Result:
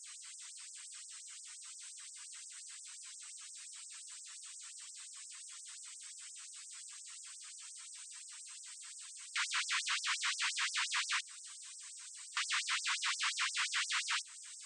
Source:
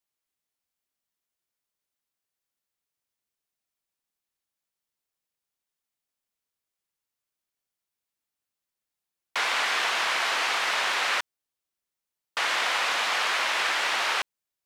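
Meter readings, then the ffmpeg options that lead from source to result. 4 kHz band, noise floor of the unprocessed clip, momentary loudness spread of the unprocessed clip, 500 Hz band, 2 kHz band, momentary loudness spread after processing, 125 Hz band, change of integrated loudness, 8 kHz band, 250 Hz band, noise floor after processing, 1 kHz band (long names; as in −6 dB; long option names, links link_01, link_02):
−8.5 dB, below −85 dBFS, 5 LU, below −40 dB, −11.5 dB, 14 LU, can't be measured, −15.0 dB, −1.0 dB, below −40 dB, −53 dBFS, −15.5 dB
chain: -af "aeval=exprs='val(0)+0.5*0.0119*sgn(val(0))':channel_layout=same,bandreject=frequency=60:width_type=h:width=6,bandreject=frequency=120:width_type=h:width=6,bandreject=frequency=180:width_type=h:width=6,bandreject=frequency=240:width_type=h:width=6,bandreject=frequency=300:width_type=h:width=6,bandreject=frequency=360:width_type=h:width=6,bandreject=frequency=420:width_type=h:width=6,volume=25.5dB,asoftclip=hard,volume=-25.5dB,highpass=frequency=110:width=0.5412,highpass=frequency=110:width=1.3066,equalizer=frequency=140:width_type=q:width=4:gain=10,equalizer=frequency=260:width_type=q:width=4:gain=10,equalizer=frequency=570:width_type=q:width=4:gain=5,equalizer=frequency=820:width_type=q:width=4:gain=-4,equalizer=frequency=8200:width_type=q:width=4:gain=9,lowpass=frequency=8400:width=0.5412,lowpass=frequency=8400:width=1.3066,afftdn=noise_reduction=17:noise_floor=-53,alimiter=level_in=3dB:limit=-24dB:level=0:latency=1:release=205,volume=-3dB,afftfilt=real='re*gte(b*sr/1024,890*pow(5300/890,0.5+0.5*sin(2*PI*5.7*pts/sr)))':imag='im*gte(b*sr/1024,890*pow(5300/890,0.5+0.5*sin(2*PI*5.7*pts/sr)))':win_size=1024:overlap=0.75"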